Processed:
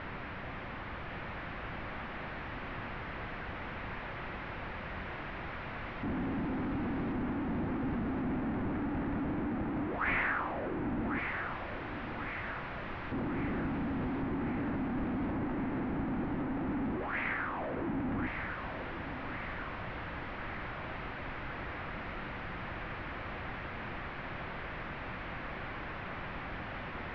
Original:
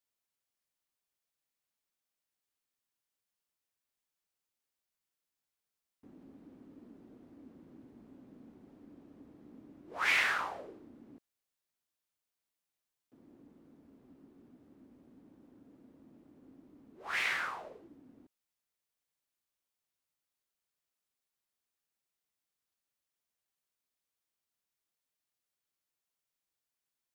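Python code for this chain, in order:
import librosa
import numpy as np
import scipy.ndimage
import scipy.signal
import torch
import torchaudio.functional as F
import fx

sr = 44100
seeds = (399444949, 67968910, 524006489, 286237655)

p1 = fx.delta_mod(x, sr, bps=32000, step_db=-32.0)
p2 = scipy.signal.sosfilt(scipy.signal.butter(4, 2100.0, 'lowpass', fs=sr, output='sos'), p1)
p3 = fx.low_shelf(p2, sr, hz=190.0, db=11.0)
p4 = fx.notch(p3, sr, hz=430.0, q=12.0)
y = p4 + fx.echo_thinned(p4, sr, ms=1096, feedback_pct=59, hz=370.0, wet_db=-6.0, dry=0)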